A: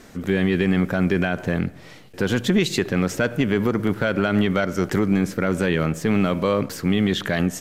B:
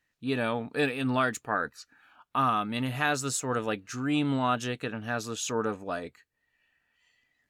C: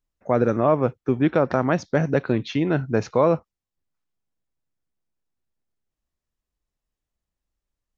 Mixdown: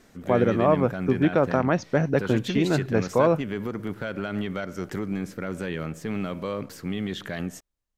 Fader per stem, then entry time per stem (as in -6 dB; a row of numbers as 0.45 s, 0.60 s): -10.0 dB, mute, -1.5 dB; 0.00 s, mute, 0.00 s